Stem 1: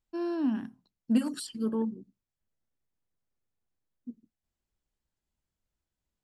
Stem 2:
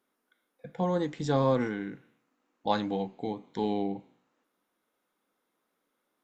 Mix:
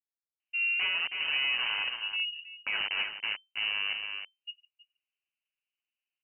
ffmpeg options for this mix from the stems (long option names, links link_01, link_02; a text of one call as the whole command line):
ffmpeg -i stem1.wav -i stem2.wav -filter_complex "[0:a]bandpass=frequency=470:width_type=q:width=1.1:csg=0,adelay=400,volume=-1.5dB,asplit=2[link_01][link_02];[link_02]volume=-18.5dB[link_03];[1:a]bandreject=frequency=93.29:width_type=h:width=4,bandreject=frequency=186.58:width_type=h:width=4,bandreject=frequency=279.87:width_type=h:width=4,bandreject=frequency=373.16:width_type=h:width=4,bandreject=frequency=466.45:width_type=h:width=4,bandreject=frequency=559.74:width_type=h:width=4,bandreject=frequency=653.03:width_type=h:width=4,bandreject=frequency=746.32:width_type=h:width=4,bandreject=frequency=839.61:width_type=h:width=4,bandreject=frequency=932.9:width_type=h:width=4,bandreject=frequency=1026.19:width_type=h:width=4,bandreject=frequency=1119.48:width_type=h:width=4,bandreject=frequency=1212.77:width_type=h:width=4,bandreject=frequency=1306.06:width_type=h:width=4,bandreject=frequency=1399.35:width_type=h:width=4,bandreject=frequency=1492.64:width_type=h:width=4,bandreject=frequency=1585.93:width_type=h:width=4,aeval=exprs='val(0)*gte(abs(val(0)),0.0376)':channel_layout=same,volume=-2dB,asplit=3[link_04][link_05][link_06];[link_05]volume=-11dB[link_07];[link_06]apad=whole_len=292722[link_08];[link_01][link_08]sidechaincompress=threshold=-40dB:ratio=8:attack=16:release=635[link_09];[link_03][link_07]amix=inputs=2:normalize=0,aecho=0:1:319:1[link_10];[link_09][link_04][link_10]amix=inputs=3:normalize=0,acontrast=49,lowpass=frequency=2600:width_type=q:width=0.5098,lowpass=frequency=2600:width_type=q:width=0.6013,lowpass=frequency=2600:width_type=q:width=0.9,lowpass=frequency=2600:width_type=q:width=2.563,afreqshift=-3100,alimiter=limit=-21.5dB:level=0:latency=1:release=52" out.wav